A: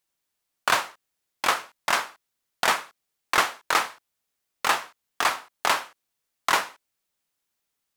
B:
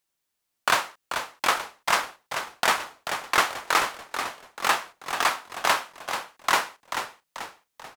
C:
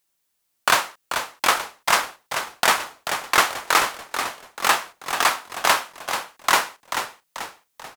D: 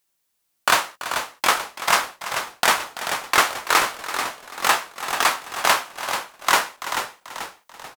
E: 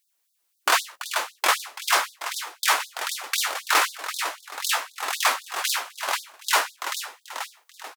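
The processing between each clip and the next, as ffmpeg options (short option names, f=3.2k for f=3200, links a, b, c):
-filter_complex "[0:a]asplit=6[a][b][c][d][e][f];[b]adelay=437,afreqshift=-57,volume=-8dB[g];[c]adelay=874,afreqshift=-114,volume=-14.9dB[h];[d]adelay=1311,afreqshift=-171,volume=-21.9dB[i];[e]adelay=1748,afreqshift=-228,volume=-28.8dB[j];[f]adelay=2185,afreqshift=-285,volume=-35.7dB[k];[a][g][h][i][j][k]amix=inputs=6:normalize=0"
-af "highshelf=f=6.6k:g=5,volume=3.5dB"
-filter_complex "[0:a]asplit=2[a][b];[b]adelay=16,volume=-13dB[c];[a][c]amix=inputs=2:normalize=0,aecho=1:1:335:0.2"
-af "volume=13dB,asoftclip=hard,volume=-13dB,afftfilt=real='re*gte(b*sr/1024,250*pow(3600/250,0.5+0.5*sin(2*PI*3.9*pts/sr)))':imag='im*gte(b*sr/1024,250*pow(3600/250,0.5+0.5*sin(2*PI*3.9*pts/sr)))':win_size=1024:overlap=0.75"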